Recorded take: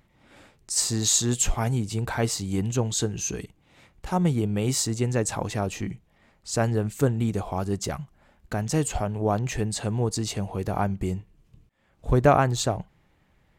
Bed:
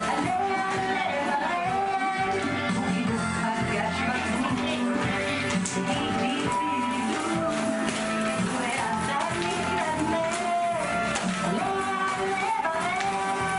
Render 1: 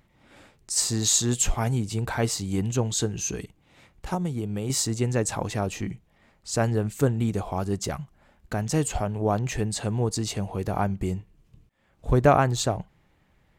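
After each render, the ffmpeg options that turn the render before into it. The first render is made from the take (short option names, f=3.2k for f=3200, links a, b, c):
-filter_complex "[0:a]asettb=1/sr,asplit=3[a][b][c];[a]atrim=end=4.144[d];[b]atrim=start=4.14:end=4.7,asetpts=PTS-STARTPTS,afade=t=in:d=0.004:c=qsin,afade=t=out:st=0.556:d=0.004:c=qsin,acrossover=split=1300|3800[e][f][g];[e]acompressor=threshold=-26dB:ratio=4[h];[f]acompressor=threshold=-52dB:ratio=4[i];[g]acompressor=threshold=-51dB:ratio=4[j];[h][i][j]amix=inputs=3:normalize=0[k];[c]atrim=start=4.696[l];[d][k]acrossfade=d=0.004:c1=hsin:c2=qsin[m];[m][l]acrossfade=d=0.004:c1=qsin:c2=hsin"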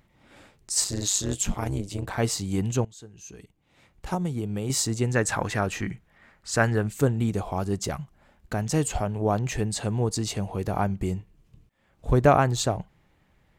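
-filter_complex "[0:a]asettb=1/sr,asplit=3[a][b][c];[a]atrim=end=0.844[d];[b]atrim=start=0.84:end=2.18,asetpts=PTS-STARTPTS,afade=t=in:d=0.004:c=qsin,afade=t=out:st=1.336:d=0.004:c=qsin,tremolo=f=200:d=0.889[e];[c]atrim=start=2.176[f];[d][e]acrossfade=d=0.004:c1=hsin:c2=qsin[g];[g][f]acrossfade=d=0.004:c1=qsin:c2=hsin,asettb=1/sr,asplit=3[h][i][j];[h]atrim=end=5.154[k];[i]atrim=start=5.15:end=6.82,asetpts=PTS-STARTPTS,afade=t=in:d=0.004:c=qsin,afade=t=out:st=1.666:d=0.004:c=qsin,equalizer=f=1.6k:w=1.4:g=10[l];[j]atrim=start=6.816[m];[k][l]acrossfade=d=0.004:c1=hsin:c2=qsin[n];[n][m]acrossfade=d=0.004:c1=qsin:c2=hsin,asplit=2[o][p];[o]atrim=end=2.85,asetpts=PTS-STARTPTS,afade=t=out:st=2.846:d=0.004:c=hsin:silence=0.0891251[q];[p]atrim=start=2.85,asetpts=PTS-STARTPTS,afade=t=in:d=1.28:c=qua:silence=0.0891251[r];[q][r]concat=n=2:v=0:a=1"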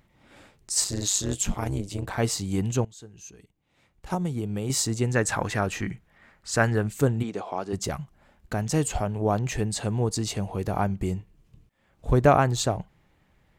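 -filter_complex "[0:a]asplit=3[a][b][c];[a]afade=t=out:st=7.22:d=0.02[d];[b]highpass=300,lowpass=5.3k,afade=t=in:st=7.22:d=0.02,afade=t=out:st=7.72:d=0.02[e];[c]afade=t=in:st=7.72:d=0.02[f];[d][e][f]amix=inputs=3:normalize=0,asplit=3[g][h][i];[g]atrim=end=3.302[j];[h]atrim=start=3.298:end=4.102,asetpts=PTS-STARTPTS,volume=-5.5dB[k];[i]atrim=start=4.098[l];[j][k]acrossfade=d=0.004:c1=hsin:c2=hsin[m];[m][l]acrossfade=d=0.004:c1=hsin:c2=hsin"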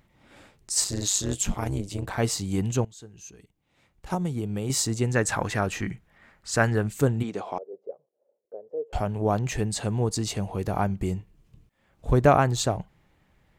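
-filter_complex "[0:a]asettb=1/sr,asplit=3[a][b][c];[a]atrim=end=7.584[d];[b]atrim=start=7.58:end=8.93,asetpts=PTS-STARTPTS,afade=t=in:d=0.004:c=qsin,afade=t=out:st=1.346:d=0.004:c=qsin,asuperpass=centerf=490:order=4:qfactor=3.5[e];[c]atrim=start=8.926[f];[d][e]acrossfade=d=0.004:c1=hsin:c2=qsin[g];[g][f]acrossfade=d=0.004:c1=qsin:c2=hsin"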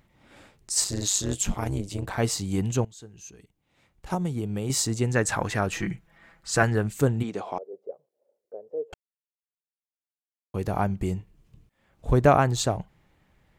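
-filter_complex "[0:a]asettb=1/sr,asplit=3[a][b][c];[a]atrim=end=5.724[d];[b]atrim=start=5.72:end=6.63,asetpts=PTS-STARTPTS,afade=t=in:d=0.004:c=qsin,afade=t=out:st=0.906:d=0.004:c=qsin,aecho=1:1:6:0.6,atrim=end_sample=40131[e];[c]atrim=start=6.626[f];[d][e]acrossfade=d=0.004:c1=hsin:c2=qsin[g];[g][f]acrossfade=d=0.004:c1=qsin:c2=hsin,asplit=3[h][i][j];[h]atrim=end=8.94,asetpts=PTS-STARTPTS,afade=t=out:st=8.936:d=0.004:c=hsin[k];[i]atrim=start=8.94:end=10.54,asetpts=PTS-STARTPTS,volume=0[l];[j]atrim=start=10.54,asetpts=PTS-STARTPTS,afade=t=in:d=0.004:c=hsin[m];[k][l][m]concat=n=3:v=0:a=1"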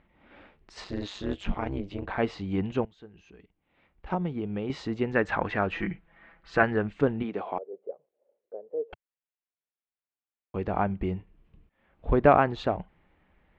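-af "lowpass=f=3k:w=0.5412,lowpass=f=3k:w=1.3066,equalizer=f=120:t=o:w=0.54:g=-11.5"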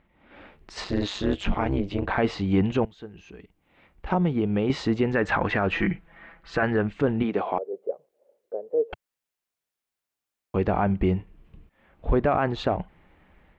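-af "dynaudnorm=f=270:g=3:m=8dB,alimiter=limit=-13dB:level=0:latency=1:release=14"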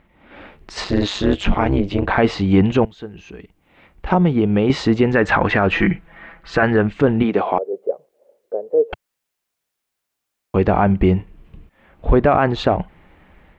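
-af "volume=8dB"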